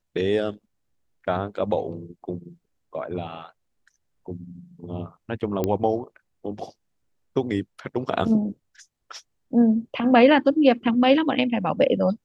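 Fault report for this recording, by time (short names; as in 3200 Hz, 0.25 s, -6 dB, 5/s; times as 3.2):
5.64 pop -11 dBFS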